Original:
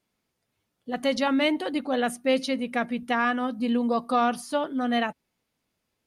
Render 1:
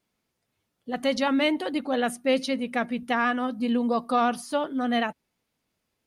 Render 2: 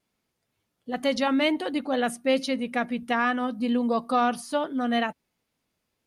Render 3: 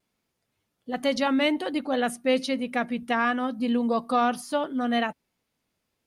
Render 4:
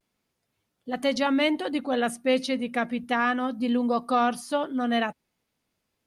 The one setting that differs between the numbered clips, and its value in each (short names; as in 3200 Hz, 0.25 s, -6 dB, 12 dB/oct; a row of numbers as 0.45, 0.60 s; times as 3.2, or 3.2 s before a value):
vibrato, rate: 12, 2.2, 1.2, 0.34 Hz